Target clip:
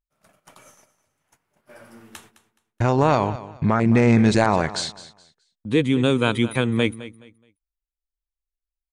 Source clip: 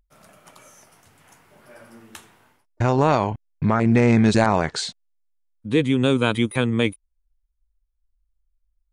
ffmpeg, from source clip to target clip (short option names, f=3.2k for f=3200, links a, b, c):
-filter_complex "[0:a]agate=range=-20dB:threshold=-49dB:ratio=16:detection=peak,asplit=2[a][b];[b]aecho=0:1:211|422|633:0.158|0.0412|0.0107[c];[a][c]amix=inputs=2:normalize=0"